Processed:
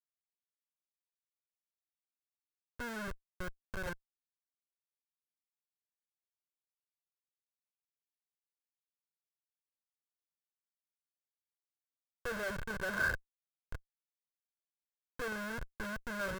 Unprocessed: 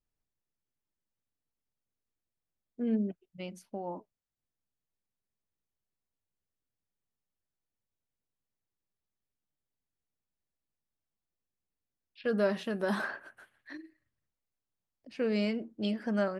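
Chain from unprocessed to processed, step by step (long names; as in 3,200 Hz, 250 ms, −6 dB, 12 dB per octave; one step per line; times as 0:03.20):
comparator with hysteresis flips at −35.5 dBFS
parametric band 1,500 Hz +15 dB 0.41 octaves
comb filter 1.9 ms, depth 48%
level −1.5 dB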